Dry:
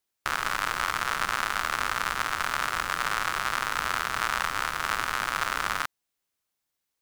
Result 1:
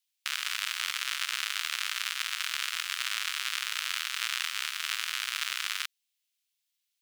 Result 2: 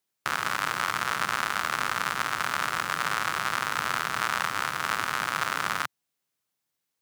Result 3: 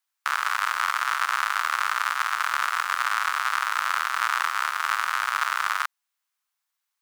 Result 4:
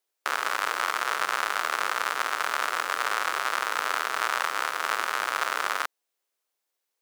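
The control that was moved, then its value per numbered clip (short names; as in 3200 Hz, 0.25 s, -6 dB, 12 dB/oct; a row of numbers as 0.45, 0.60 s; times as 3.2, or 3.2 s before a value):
resonant high-pass, frequency: 2900, 130, 1100, 440 Hz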